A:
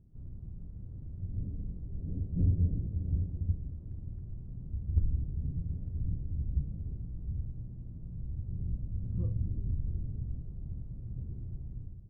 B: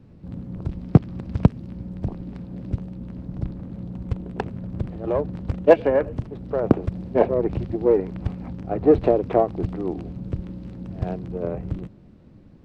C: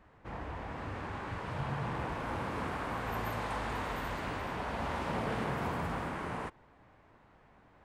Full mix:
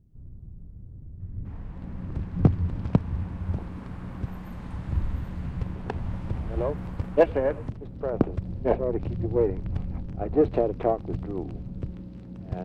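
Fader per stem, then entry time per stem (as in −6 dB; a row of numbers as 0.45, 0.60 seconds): +0.5, −5.5, −12.0 decibels; 0.00, 1.50, 1.20 seconds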